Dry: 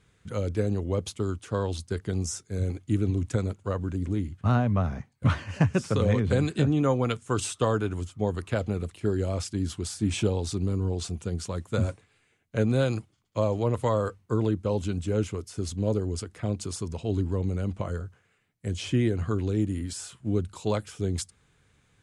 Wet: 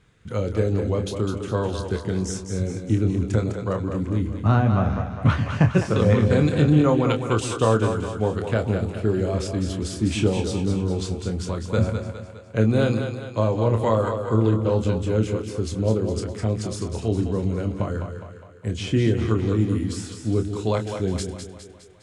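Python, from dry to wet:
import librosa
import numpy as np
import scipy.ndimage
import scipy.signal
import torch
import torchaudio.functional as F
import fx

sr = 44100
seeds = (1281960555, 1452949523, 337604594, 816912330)

y = fx.high_shelf(x, sr, hz=6800.0, db=-9.0)
y = fx.doubler(y, sr, ms=27.0, db=-7)
y = fx.echo_split(y, sr, split_hz=340.0, low_ms=137, high_ms=205, feedback_pct=52, wet_db=-7.0)
y = y * librosa.db_to_amplitude(4.0)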